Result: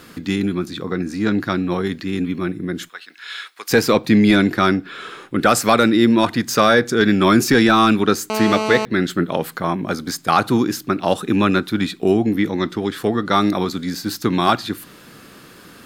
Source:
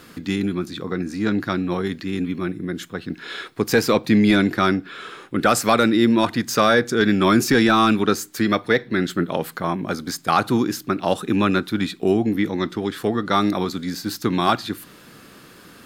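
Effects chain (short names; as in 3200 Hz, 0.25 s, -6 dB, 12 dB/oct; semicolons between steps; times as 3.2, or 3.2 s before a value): 2.89–3.71 HPF 1400 Hz 12 dB/oct; 8.3–8.85 GSM buzz -24 dBFS; gain +2.5 dB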